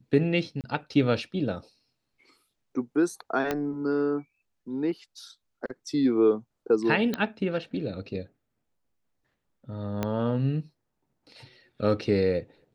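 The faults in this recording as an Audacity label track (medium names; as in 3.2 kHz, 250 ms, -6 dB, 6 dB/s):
0.610000	0.640000	dropout 28 ms
3.510000	3.510000	pop -13 dBFS
7.140000	7.140000	pop -14 dBFS
10.030000	10.030000	pop -14 dBFS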